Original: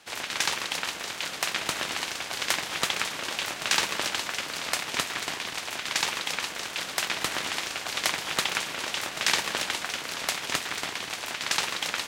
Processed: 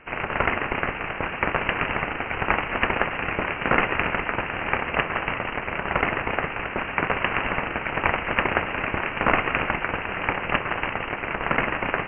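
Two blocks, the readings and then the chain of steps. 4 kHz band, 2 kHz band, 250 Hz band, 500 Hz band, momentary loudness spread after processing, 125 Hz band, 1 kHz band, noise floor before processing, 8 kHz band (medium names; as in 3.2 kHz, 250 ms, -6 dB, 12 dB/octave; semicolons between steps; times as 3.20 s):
-8.5 dB, +6.0 dB, +12.0 dB, +10.5 dB, 5 LU, +15.0 dB, +8.5 dB, -38 dBFS, under -40 dB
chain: frequency inversion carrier 3 kHz; trim +7.5 dB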